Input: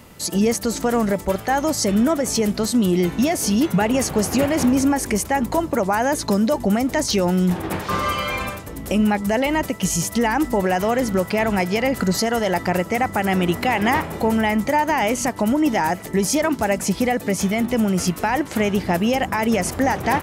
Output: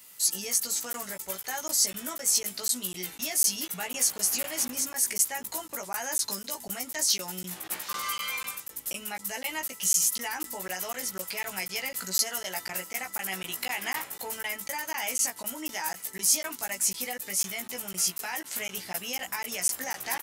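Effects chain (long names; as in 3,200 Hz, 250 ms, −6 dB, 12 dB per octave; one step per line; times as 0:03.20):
high-pass filter 72 Hz
first-order pre-emphasis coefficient 0.97
double-tracking delay 16 ms −3 dB
regular buffer underruns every 0.25 s, samples 512, zero, from 0:00.93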